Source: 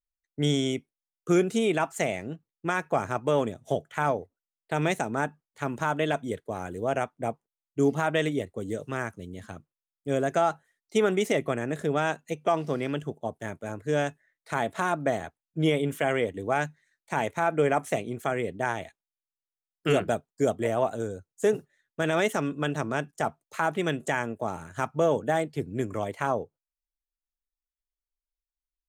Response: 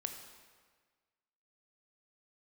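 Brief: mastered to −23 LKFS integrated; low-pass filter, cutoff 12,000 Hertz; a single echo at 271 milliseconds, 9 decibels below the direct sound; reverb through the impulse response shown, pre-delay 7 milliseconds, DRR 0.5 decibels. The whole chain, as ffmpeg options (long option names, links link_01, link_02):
-filter_complex "[0:a]lowpass=12000,aecho=1:1:271:0.355,asplit=2[link_01][link_02];[1:a]atrim=start_sample=2205,adelay=7[link_03];[link_02][link_03]afir=irnorm=-1:irlink=0,volume=0.5dB[link_04];[link_01][link_04]amix=inputs=2:normalize=0,volume=2dB"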